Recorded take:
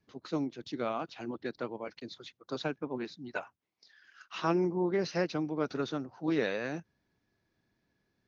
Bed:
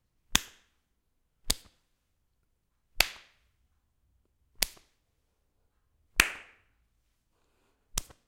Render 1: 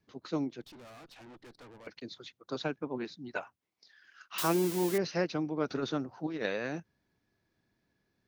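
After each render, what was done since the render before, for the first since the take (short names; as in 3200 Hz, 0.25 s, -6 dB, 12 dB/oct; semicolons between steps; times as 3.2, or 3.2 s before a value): 0.61–1.87 tube stage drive 50 dB, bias 0.65; 4.38–4.98 switching spikes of -24 dBFS; 5.68–6.46 negative-ratio compressor -32 dBFS, ratio -0.5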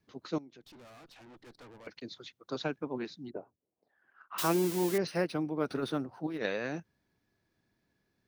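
0.38–1.47 compressor 4:1, threshold -52 dBFS; 3.29–4.37 synth low-pass 340 Hz -> 1200 Hz, resonance Q 2; 5.07–6.38 decimation joined by straight lines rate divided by 3×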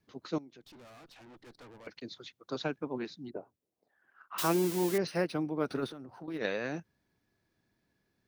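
5.86–6.28 compressor 12:1, threshold -41 dBFS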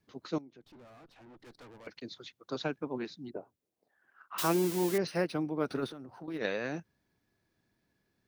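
0.41–1.4 high shelf 2300 Hz -10 dB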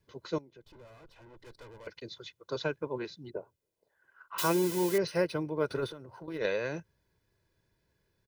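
low shelf 110 Hz +5.5 dB; comb 2 ms, depth 61%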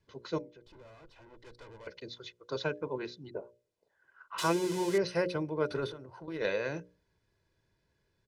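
LPF 7600 Hz 12 dB/oct; notches 60/120/180/240/300/360/420/480/540/600 Hz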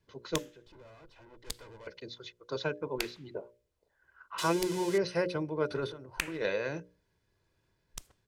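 add bed -11.5 dB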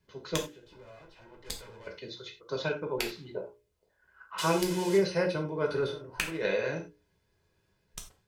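non-linear reverb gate 0.12 s falling, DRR 1 dB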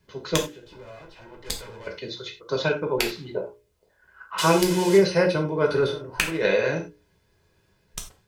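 gain +8 dB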